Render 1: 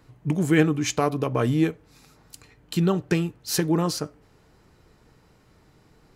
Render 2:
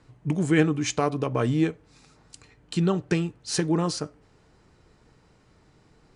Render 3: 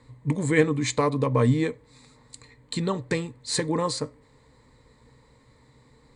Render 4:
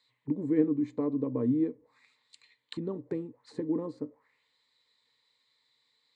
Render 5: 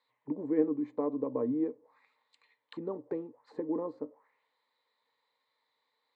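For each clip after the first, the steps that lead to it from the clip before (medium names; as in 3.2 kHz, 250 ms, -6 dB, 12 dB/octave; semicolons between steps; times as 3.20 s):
steep low-pass 9.9 kHz 96 dB/octave; trim -1.5 dB
rippled EQ curve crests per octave 1, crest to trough 12 dB
auto-wah 300–4100 Hz, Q 3, down, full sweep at -26.5 dBFS
band-pass filter 760 Hz, Q 1.3; trim +5.5 dB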